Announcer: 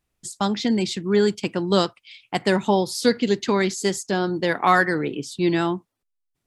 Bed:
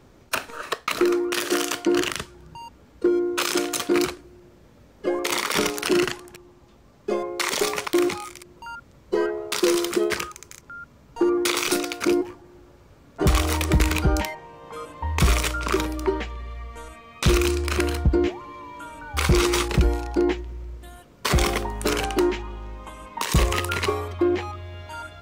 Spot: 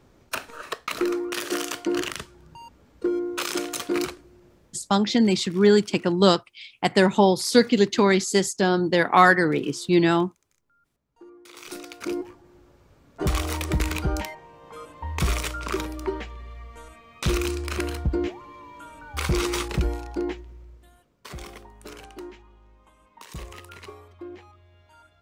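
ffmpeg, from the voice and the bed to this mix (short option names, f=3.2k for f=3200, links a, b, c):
-filter_complex "[0:a]adelay=4500,volume=2dB[a];[1:a]volume=18dB,afade=t=out:st=4.51:d=0.46:silence=0.0707946,afade=t=in:st=11.47:d=1:silence=0.0749894,afade=t=out:st=19.87:d=1.4:silence=0.211349[b];[a][b]amix=inputs=2:normalize=0"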